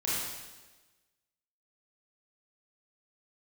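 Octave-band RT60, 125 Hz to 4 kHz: 1.2, 1.3, 1.3, 1.2, 1.2, 1.2 s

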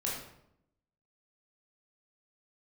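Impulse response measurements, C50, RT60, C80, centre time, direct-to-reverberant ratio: 2.0 dB, 0.75 s, 5.5 dB, 52 ms, -5.0 dB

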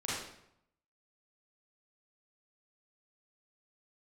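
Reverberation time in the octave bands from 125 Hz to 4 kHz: 0.95, 0.80, 0.75, 0.75, 0.65, 0.60 s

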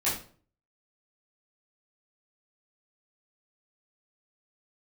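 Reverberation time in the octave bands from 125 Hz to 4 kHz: 0.60, 0.55, 0.50, 0.40, 0.35, 0.35 s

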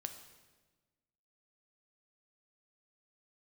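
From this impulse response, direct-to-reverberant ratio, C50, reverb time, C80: 6.5 dB, 9.0 dB, 1.3 s, 10.5 dB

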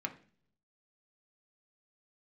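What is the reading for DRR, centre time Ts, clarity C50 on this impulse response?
3.5 dB, 7 ms, 14.0 dB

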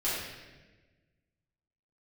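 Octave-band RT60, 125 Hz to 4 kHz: 1.9, 1.7, 1.5, 1.1, 1.3, 1.0 s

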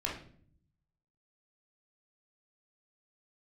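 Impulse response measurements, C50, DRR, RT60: 5.0 dB, -3.5 dB, 0.55 s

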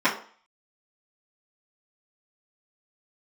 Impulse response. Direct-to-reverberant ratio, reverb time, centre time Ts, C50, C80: -13.0 dB, 0.45 s, 21 ms, 10.0 dB, 14.0 dB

